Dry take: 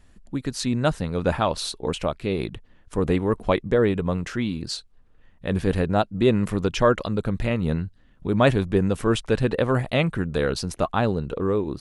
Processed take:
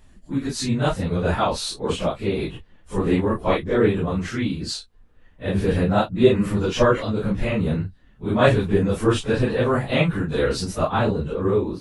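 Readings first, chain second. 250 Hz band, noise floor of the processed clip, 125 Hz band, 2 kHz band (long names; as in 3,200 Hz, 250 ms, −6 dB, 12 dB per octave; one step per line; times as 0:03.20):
+2.0 dB, −52 dBFS, +1.5 dB, +2.0 dB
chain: random phases in long frames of 100 ms
level +2 dB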